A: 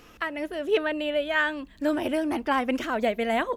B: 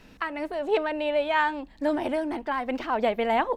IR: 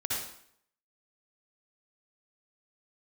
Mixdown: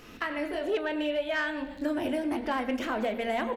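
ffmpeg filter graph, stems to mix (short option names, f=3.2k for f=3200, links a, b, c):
-filter_complex "[0:a]asoftclip=type=tanh:threshold=-16.5dB,volume=0.5dB[a];[1:a]equalizer=f=250:t=o:w=1:g=6,equalizer=f=500:t=o:w=1:g=4,equalizer=f=1k:t=o:w=1:g=-3,equalizer=f=2k:t=o:w=1:g=4,equalizer=f=4k:t=o:w=1:g=5,acrossover=split=160[b][c];[c]acompressor=threshold=-28dB:ratio=6[d];[b][d]amix=inputs=2:normalize=0,flanger=delay=16.5:depth=2:speed=2.9,adelay=21,volume=-4.5dB,asplit=2[e][f];[f]volume=-3.5dB[g];[2:a]atrim=start_sample=2205[h];[g][h]afir=irnorm=-1:irlink=0[i];[a][e][i]amix=inputs=3:normalize=0,acompressor=threshold=-30dB:ratio=2"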